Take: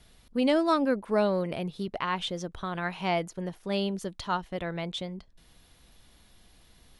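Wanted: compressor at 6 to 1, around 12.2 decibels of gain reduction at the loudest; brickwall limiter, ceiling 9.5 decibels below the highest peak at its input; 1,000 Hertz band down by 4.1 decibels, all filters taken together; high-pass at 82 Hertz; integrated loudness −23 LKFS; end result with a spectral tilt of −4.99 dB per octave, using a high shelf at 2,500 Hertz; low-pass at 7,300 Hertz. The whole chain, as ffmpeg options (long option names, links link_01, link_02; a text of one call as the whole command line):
ffmpeg -i in.wav -af "highpass=82,lowpass=7300,equalizer=frequency=1000:width_type=o:gain=-4,highshelf=frequency=2500:gain=-8,acompressor=threshold=-35dB:ratio=6,volume=19.5dB,alimiter=limit=-13.5dB:level=0:latency=1" out.wav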